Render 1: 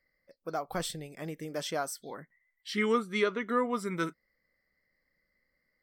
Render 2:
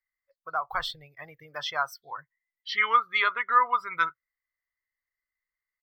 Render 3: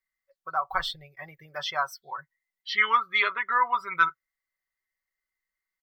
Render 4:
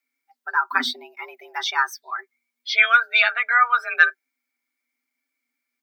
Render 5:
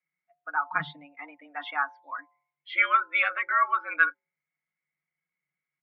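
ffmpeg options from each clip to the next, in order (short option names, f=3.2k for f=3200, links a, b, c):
-af "afftdn=nr=22:nf=-42,firequalizer=gain_entry='entry(120,0);entry(190,-29);entry(480,-13);entry(1000,9);entry(1800,6);entry(4600,3);entry(8300,-20);entry(14000,12)':delay=0.05:min_phase=1,volume=3.5dB"
-af "aecho=1:1:5.3:0.64"
-af "afreqshift=240,volume=6.5dB"
-af "bandreject=f=162.1:t=h:w=4,bandreject=f=324.2:t=h:w=4,bandreject=f=486.3:t=h:w=4,bandreject=f=648.4:t=h:w=4,bandreject=f=810.5:t=h:w=4,bandreject=f=972.6:t=h:w=4,bandreject=f=1.1347k:t=h:w=4,highpass=f=190:t=q:w=0.5412,highpass=f=190:t=q:w=1.307,lowpass=f=3k:t=q:w=0.5176,lowpass=f=3k:t=q:w=0.7071,lowpass=f=3k:t=q:w=1.932,afreqshift=-98,volume=-6.5dB"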